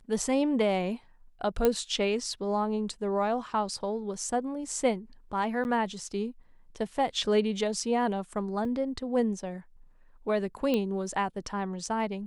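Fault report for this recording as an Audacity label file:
1.650000	1.650000	pop -11 dBFS
5.640000	5.650000	gap 9.8 ms
8.650000	8.650000	gap 2.6 ms
10.740000	10.740000	pop -16 dBFS

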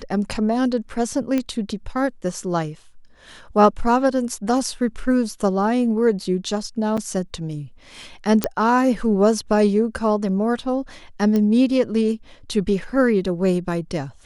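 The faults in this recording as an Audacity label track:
1.380000	1.380000	pop -10 dBFS
6.970000	6.980000	gap 6.1 ms
8.440000	8.440000	pop -3 dBFS
11.360000	11.360000	pop -12 dBFS

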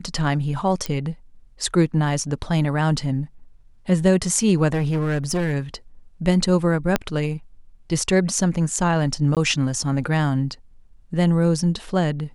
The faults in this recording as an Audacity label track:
0.860000	0.860000	pop -10 dBFS
4.720000	5.530000	clipped -18 dBFS
6.960000	6.960000	pop -4 dBFS
9.350000	9.370000	gap 17 ms

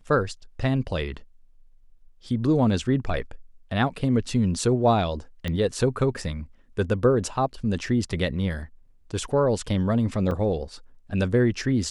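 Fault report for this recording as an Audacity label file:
5.480000	5.480000	pop -16 dBFS
10.310000	10.310000	gap 4.2 ms

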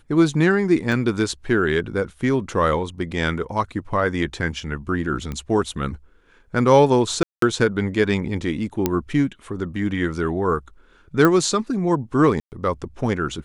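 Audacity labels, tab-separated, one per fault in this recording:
0.920000	0.920000	gap 2.1 ms
5.320000	5.320000	pop -17 dBFS
7.230000	7.420000	gap 0.193 s
8.860000	8.860000	pop -5 dBFS
11.250000	11.250000	pop -5 dBFS
12.400000	12.520000	gap 0.119 s

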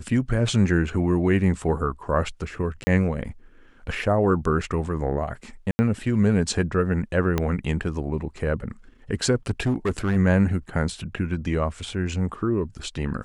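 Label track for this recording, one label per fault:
2.840000	2.870000	gap 30 ms
5.710000	5.790000	gap 80 ms
7.380000	7.380000	pop -9 dBFS
9.500000	10.170000	clipped -18 dBFS

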